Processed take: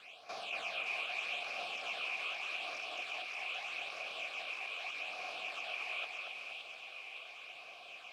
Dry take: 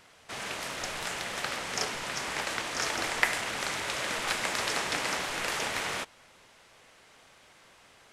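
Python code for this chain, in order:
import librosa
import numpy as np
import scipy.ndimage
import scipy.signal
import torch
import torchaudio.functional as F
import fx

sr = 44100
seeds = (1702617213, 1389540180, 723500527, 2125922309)

y = scipy.signal.sosfilt(scipy.signal.bessel(2, 7800.0, 'lowpass', norm='mag', fs=sr, output='sos'), x)
y = fx.high_shelf_res(y, sr, hz=1600.0, db=11.0, q=1.5)
y = fx.over_compress(y, sr, threshold_db=-31.0, ratio=-1.0)
y = fx.phaser_stages(y, sr, stages=8, low_hz=180.0, high_hz=2800.0, hz=0.81, feedback_pct=20)
y = fx.quant_companded(y, sr, bits=4)
y = 10.0 ** (-27.5 / 20.0) * np.tanh(y / 10.0 ** (-27.5 / 20.0))
y = fx.vowel_filter(y, sr, vowel='a')
y = fx.echo_split(y, sr, split_hz=2500.0, low_ms=235, high_ms=569, feedback_pct=52, wet_db=-3)
y = F.gain(torch.from_numpy(y), 6.5).numpy()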